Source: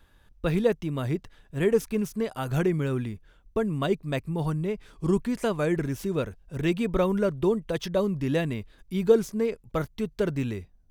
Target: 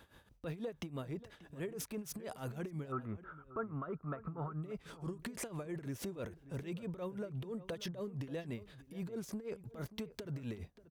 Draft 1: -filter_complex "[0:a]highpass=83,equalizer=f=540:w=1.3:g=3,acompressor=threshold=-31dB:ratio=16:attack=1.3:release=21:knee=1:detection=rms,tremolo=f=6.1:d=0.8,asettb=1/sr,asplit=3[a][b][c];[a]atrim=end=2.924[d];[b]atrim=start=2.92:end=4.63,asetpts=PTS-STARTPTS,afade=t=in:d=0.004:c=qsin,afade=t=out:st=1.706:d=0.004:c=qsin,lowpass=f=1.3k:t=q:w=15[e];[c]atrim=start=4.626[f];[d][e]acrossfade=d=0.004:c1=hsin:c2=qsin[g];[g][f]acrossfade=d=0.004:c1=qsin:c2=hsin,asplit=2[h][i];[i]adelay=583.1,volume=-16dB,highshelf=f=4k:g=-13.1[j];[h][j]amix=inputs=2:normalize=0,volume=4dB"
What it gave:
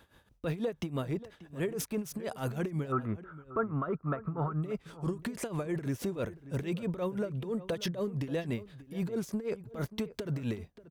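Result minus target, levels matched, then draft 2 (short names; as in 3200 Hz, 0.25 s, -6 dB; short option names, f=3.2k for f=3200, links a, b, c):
compressor: peak gain reduction -8.5 dB
-filter_complex "[0:a]highpass=83,equalizer=f=540:w=1.3:g=3,acompressor=threshold=-40dB:ratio=16:attack=1.3:release=21:knee=1:detection=rms,tremolo=f=6.1:d=0.8,asettb=1/sr,asplit=3[a][b][c];[a]atrim=end=2.924[d];[b]atrim=start=2.92:end=4.63,asetpts=PTS-STARTPTS,afade=t=in:d=0.004:c=qsin,afade=t=out:st=1.706:d=0.004:c=qsin,lowpass=f=1.3k:t=q:w=15[e];[c]atrim=start=4.626[f];[d][e]acrossfade=d=0.004:c1=hsin:c2=qsin[g];[g][f]acrossfade=d=0.004:c1=qsin:c2=hsin,asplit=2[h][i];[i]adelay=583.1,volume=-16dB,highshelf=f=4k:g=-13.1[j];[h][j]amix=inputs=2:normalize=0,volume=4dB"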